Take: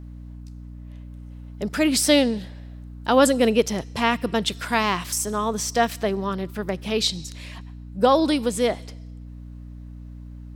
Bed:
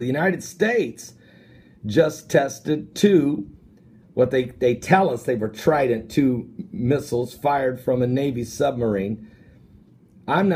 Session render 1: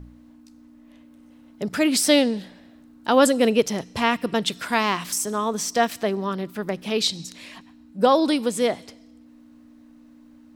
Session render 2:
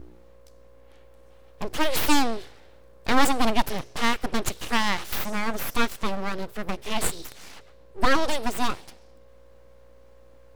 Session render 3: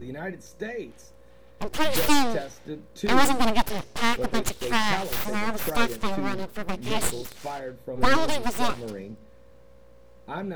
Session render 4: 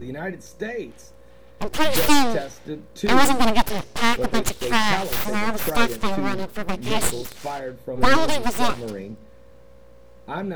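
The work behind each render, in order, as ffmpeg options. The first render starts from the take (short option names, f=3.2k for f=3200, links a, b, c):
-af "bandreject=f=60:t=h:w=4,bandreject=f=120:t=h:w=4,bandreject=f=180:t=h:w=4"
-af "aeval=exprs='abs(val(0))':c=same"
-filter_complex "[1:a]volume=-14dB[a];[0:a][a]amix=inputs=2:normalize=0"
-af "volume=4dB,alimiter=limit=-2dB:level=0:latency=1"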